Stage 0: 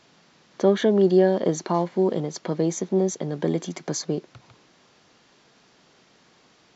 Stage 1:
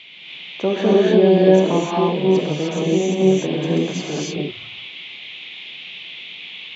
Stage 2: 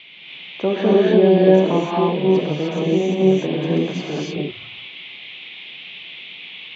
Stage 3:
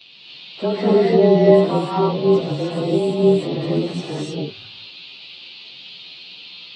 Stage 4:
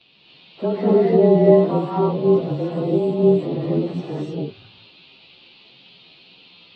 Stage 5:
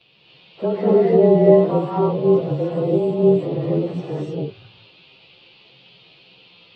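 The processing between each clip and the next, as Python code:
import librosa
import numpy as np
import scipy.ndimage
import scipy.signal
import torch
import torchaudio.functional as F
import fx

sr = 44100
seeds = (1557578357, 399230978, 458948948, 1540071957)

y1 = fx.high_shelf(x, sr, hz=4100.0, db=-9.0)
y1 = fx.dmg_noise_band(y1, sr, seeds[0], low_hz=2100.0, high_hz=3600.0, level_db=-41.0)
y1 = fx.rev_gated(y1, sr, seeds[1], gate_ms=330, shape='rising', drr_db=-6.0)
y1 = y1 * librosa.db_to_amplitude(-1.5)
y2 = scipy.signal.sosfilt(scipy.signal.butter(2, 3800.0, 'lowpass', fs=sr, output='sos'), y1)
y3 = fx.partial_stretch(y2, sr, pct=108)
y3 = y3 * librosa.db_to_amplitude(1.5)
y4 = fx.lowpass(y3, sr, hz=1000.0, slope=6)
y5 = fx.graphic_eq_31(y4, sr, hz=(125, 250, 500, 4000), db=(6, -7, 5, -5))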